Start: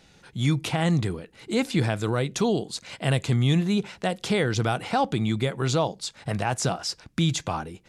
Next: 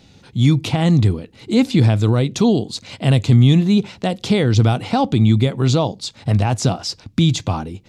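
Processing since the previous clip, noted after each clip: fifteen-band EQ 100 Hz +11 dB, 250 Hz +7 dB, 1600 Hz -6 dB, 4000 Hz +3 dB, 10000 Hz -6 dB; gain +4.5 dB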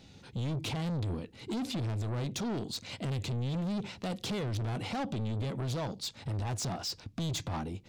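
limiter -12.5 dBFS, peak gain reduction 9 dB; soft clip -24.5 dBFS, distortion -8 dB; gain -6.5 dB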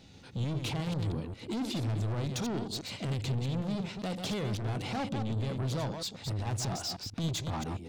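reverse delay 0.134 s, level -6 dB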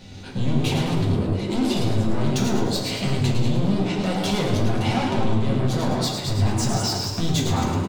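compressor, threshold -33 dBFS, peak gain reduction 4.5 dB; frequency-shifting echo 0.107 s, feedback 48%, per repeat +110 Hz, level -6 dB; reverb RT60 0.65 s, pre-delay 5 ms, DRR -2.5 dB; gain +8 dB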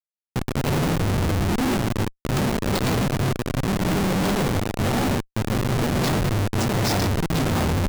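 Schmitt trigger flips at -24.5 dBFS

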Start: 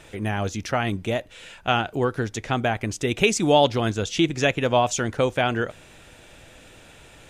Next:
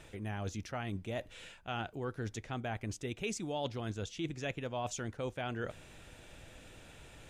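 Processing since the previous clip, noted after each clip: low shelf 190 Hz +5 dB; reverse; compressor 4:1, threshold -29 dBFS, peak gain reduction 14.5 dB; reverse; gain -7.5 dB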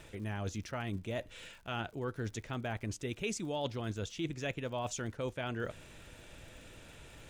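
notch 760 Hz, Q 12; crackle 82/s -50 dBFS; gain +1 dB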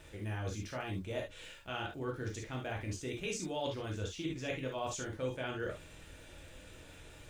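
reverb, pre-delay 3 ms, DRR -1 dB; gain -4 dB

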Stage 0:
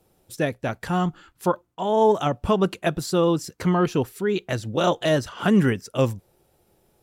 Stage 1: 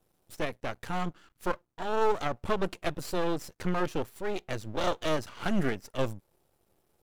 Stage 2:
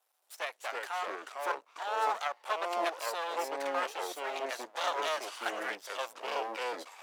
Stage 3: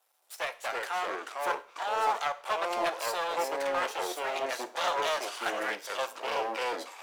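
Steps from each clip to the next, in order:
half-wave rectifier; gain -4.5 dB
HPF 690 Hz 24 dB/oct; echoes that change speed 0.22 s, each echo -4 st, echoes 2
in parallel at -4 dB: overloaded stage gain 33 dB; on the sum: reverb, pre-delay 3 ms, DRR 10 dB

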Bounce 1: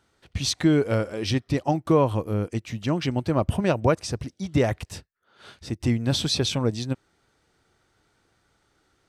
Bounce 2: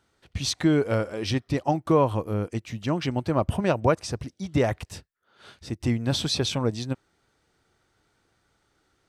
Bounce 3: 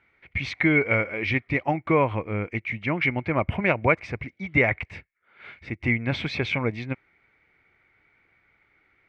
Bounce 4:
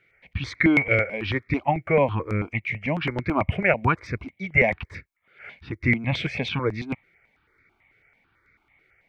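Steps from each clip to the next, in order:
dynamic EQ 970 Hz, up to +3 dB, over -37 dBFS, Q 0.78; gain -2 dB
synth low-pass 2200 Hz, resonance Q 16; gain -1.5 dB
step phaser 9.1 Hz 250–3000 Hz; gain +4 dB

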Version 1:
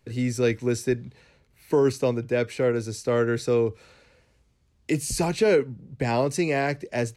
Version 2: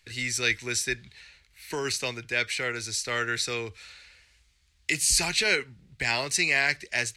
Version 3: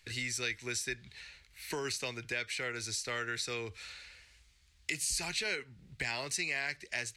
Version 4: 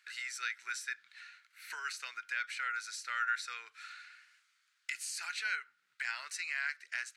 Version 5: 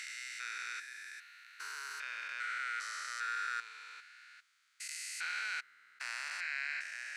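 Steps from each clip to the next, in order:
ten-band EQ 125 Hz -11 dB, 250 Hz -12 dB, 500 Hz -12 dB, 1000 Hz -5 dB, 2000 Hz +7 dB, 4000 Hz +7 dB, 8000 Hz +5 dB; gain +2 dB
compressor 2.5:1, threshold -37 dBFS, peak gain reduction 12 dB
resonant high-pass 1400 Hz, resonance Q 6.7; gain -7.5 dB
stepped spectrum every 0.4 s; gain +3 dB

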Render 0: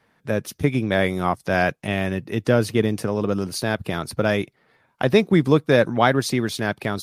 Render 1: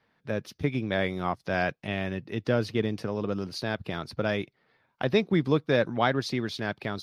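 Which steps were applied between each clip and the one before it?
resonant high shelf 6300 Hz -10 dB, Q 1.5; gain -7.5 dB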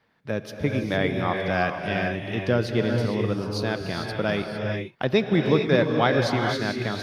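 non-linear reverb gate 0.48 s rising, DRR 2.5 dB; gain +2.5 dB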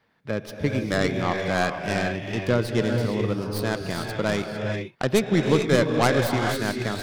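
tracing distortion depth 0.23 ms

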